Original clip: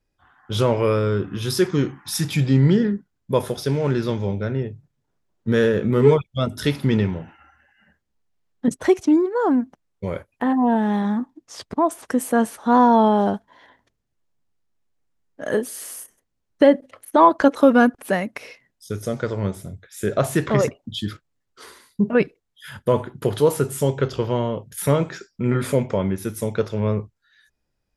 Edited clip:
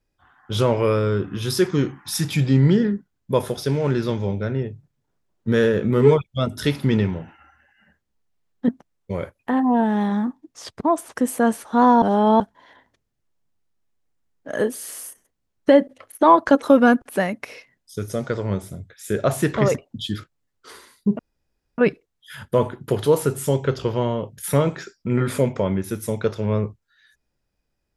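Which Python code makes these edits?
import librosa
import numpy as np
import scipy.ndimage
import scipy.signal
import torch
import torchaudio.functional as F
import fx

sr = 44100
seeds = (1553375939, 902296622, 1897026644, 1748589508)

y = fx.edit(x, sr, fx.cut(start_s=8.69, length_s=0.93),
    fx.reverse_span(start_s=12.95, length_s=0.38),
    fx.insert_room_tone(at_s=22.12, length_s=0.59), tone=tone)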